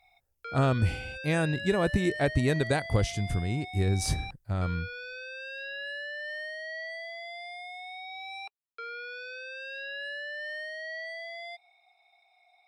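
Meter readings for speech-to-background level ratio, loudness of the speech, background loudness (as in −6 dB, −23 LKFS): 9.5 dB, −29.0 LKFS, −38.5 LKFS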